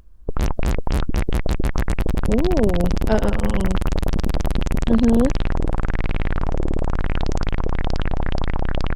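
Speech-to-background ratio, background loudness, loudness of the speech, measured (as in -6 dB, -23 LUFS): 3.0 dB, -25.0 LUFS, -22.0 LUFS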